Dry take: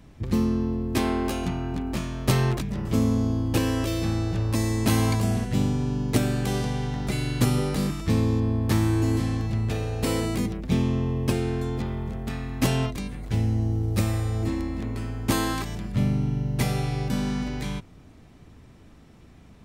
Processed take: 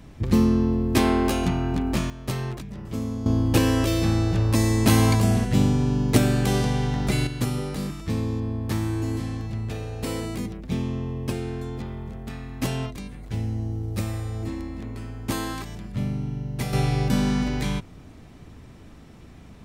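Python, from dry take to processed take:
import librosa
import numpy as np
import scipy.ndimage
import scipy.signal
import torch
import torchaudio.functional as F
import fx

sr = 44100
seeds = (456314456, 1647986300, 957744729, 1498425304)

y = fx.gain(x, sr, db=fx.steps((0.0, 4.5), (2.1, -7.0), (3.26, 4.0), (7.27, -4.0), (16.73, 4.5)))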